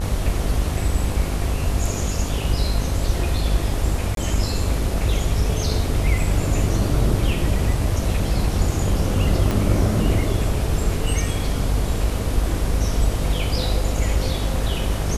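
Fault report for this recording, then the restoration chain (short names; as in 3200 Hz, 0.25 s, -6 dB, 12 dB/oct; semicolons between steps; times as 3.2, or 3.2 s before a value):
buzz 50 Hz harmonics 28 -25 dBFS
4.15–4.17 gap 22 ms
9.51 pop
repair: de-click; de-hum 50 Hz, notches 28; interpolate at 4.15, 22 ms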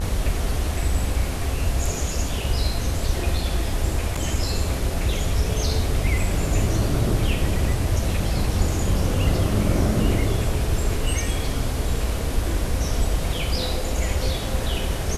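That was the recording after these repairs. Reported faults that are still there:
9.51 pop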